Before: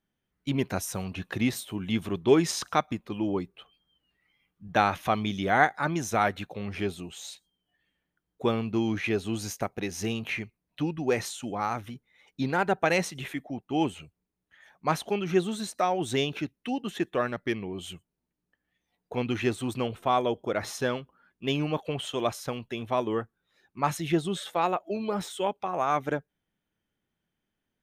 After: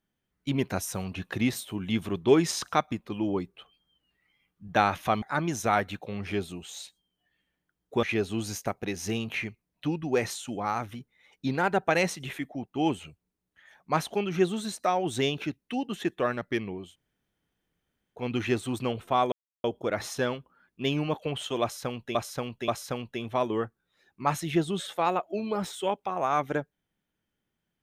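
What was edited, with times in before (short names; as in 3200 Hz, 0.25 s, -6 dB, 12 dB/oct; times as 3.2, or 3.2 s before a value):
5.22–5.7 cut
8.51–8.98 cut
17.79–19.15 room tone, crossfade 0.24 s
20.27 insert silence 0.32 s
22.25–22.78 loop, 3 plays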